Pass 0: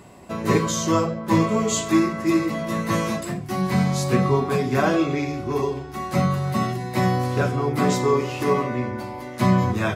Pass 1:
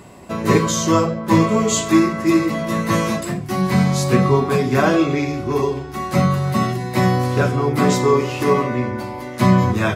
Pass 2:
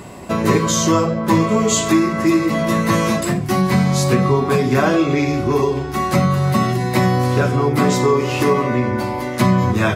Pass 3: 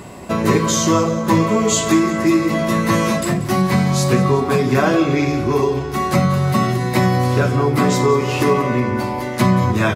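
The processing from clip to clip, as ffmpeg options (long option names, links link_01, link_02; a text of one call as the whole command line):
ffmpeg -i in.wav -af "equalizer=frequency=740:width_type=o:width=0.23:gain=-2,volume=4.5dB" out.wav
ffmpeg -i in.wav -af "acompressor=threshold=-21dB:ratio=2.5,volume=6.5dB" out.wav
ffmpeg -i in.wav -af "aecho=1:1:184|368|552|736|920:0.168|0.0873|0.0454|0.0236|0.0123" out.wav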